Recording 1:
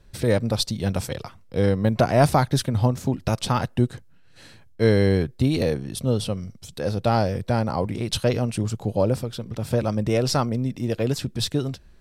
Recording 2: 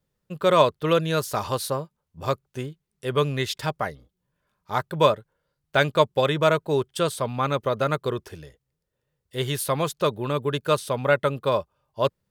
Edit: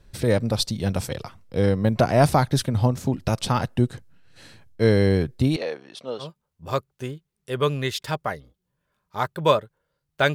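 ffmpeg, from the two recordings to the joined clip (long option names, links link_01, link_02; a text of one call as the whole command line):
ffmpeg -i cue0.wav -i cue1.wav -filter_complex "[0:a]asettb=1/sr,asplit=3[link_01][link_02][link_03];[link_01]atrim=end=5.564[link_04];[link_02]atrim=start=5.56:end=6.3,asetpts=PTS-STARTPTS,afade=type=in:duration=0.004:curve=qsin,afade=type=out:start_time=0.736:duration=0.004:curve=qsin,highpass=590,lowpass=3900[link_05];[link_03]atrim=start=6.296[link_06];[link_04][link_05]acrossfade=duration=0.004:curve1=hsin:curve2=qsin[link_07];[link_07][link_06]acrossfade=duration=0.004:curve1=qsin:curve2=hsin,apad=whole_dur=10.34,atrim=end=10.34,atrim=end=6.3,asetpts=PTS-STARTPTS[link_08];[1:a]atrim=start=1.73:end=5.89,asetpts=PTS-STARTPTS[link_09];[link_08][link_09]acrossfade=duration=0.12:curve1=tri:curve2=tri" out.wav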